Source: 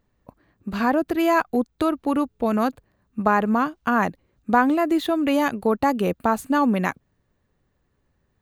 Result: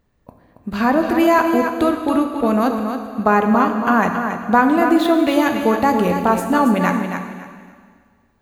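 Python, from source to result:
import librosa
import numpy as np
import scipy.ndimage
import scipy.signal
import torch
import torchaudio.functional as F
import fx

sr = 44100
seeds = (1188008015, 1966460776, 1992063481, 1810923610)

p1 = x + fx.echo_feedback(x, sr, ms=276, feedback_pct=22, wet_db=-7.5, dry=0)
p2 = fx.rev_plate(p1, sr, seeds[0], rt60_s=1.8, hf_ratio=1.0, predelay_ms=0, drr_db=5.0)
y = p2 * librosa.db_to_amplitude(3.5)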